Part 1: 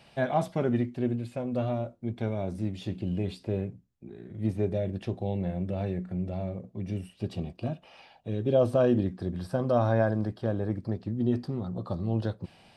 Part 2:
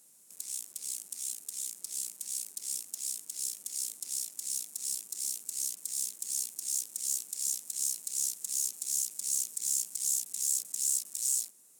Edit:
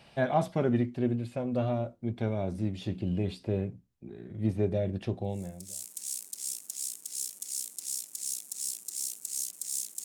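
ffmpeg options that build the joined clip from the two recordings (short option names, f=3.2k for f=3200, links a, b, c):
-filter_complex "[0:a]apad=whole_dur=10.04,atrim=end=10.04,atrim=end=5.91,asetpts=PTS-STARTPTS[a];[1:a]atrim=start=1.41:end=6.28,asetpts=PTS-STARTPTS[b];[a][b]acrossfade=d=0.74:c1=qua:c2=qua"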